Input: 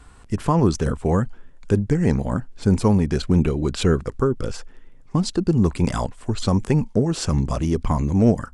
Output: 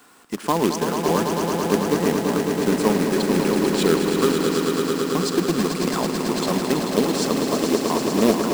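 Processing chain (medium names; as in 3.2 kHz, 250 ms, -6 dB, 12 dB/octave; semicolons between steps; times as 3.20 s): high-pass 220 Hz 24 dB/octave; companded quantiser 4-bit; echo with a slow build-up 110 ms, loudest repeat 5, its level -7 dB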